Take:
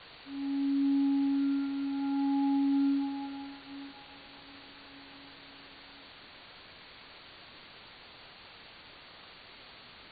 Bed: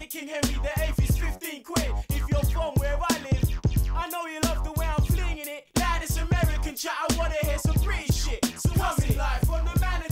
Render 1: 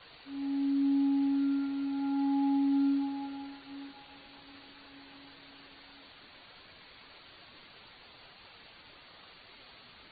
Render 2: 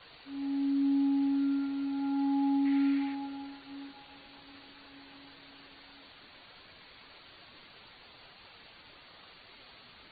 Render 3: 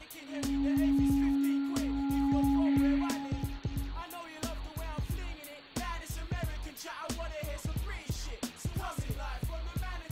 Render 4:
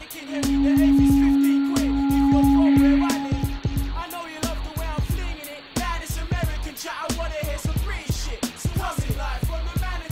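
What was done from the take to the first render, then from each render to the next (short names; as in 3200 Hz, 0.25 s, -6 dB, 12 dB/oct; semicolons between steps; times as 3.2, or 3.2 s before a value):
denoiser 6 dB, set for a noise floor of -53 dBFS
2.65–3.15 bell 2100 Hz +14 dB 0.7 oct
add bed -12.5 dB
gain +11 dB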